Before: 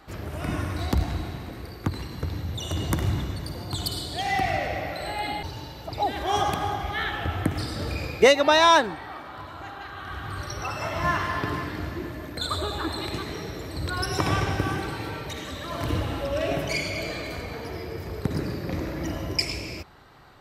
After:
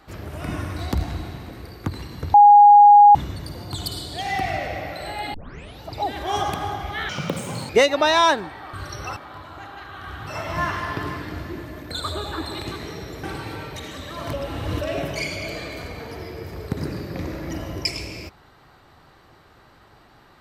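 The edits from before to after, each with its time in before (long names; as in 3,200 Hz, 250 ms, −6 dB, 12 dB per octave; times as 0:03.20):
0:02.34–0:03.15: beep over 823 Hz −6 dBFS
0:05.34: tape start 0.47 s
0:07.09–0:08.16: play speed 177%
0:10.31–0:10.74: move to 0:09.20
0:13.70–0:14.77: remove
0:15.87–0:16.35: reverse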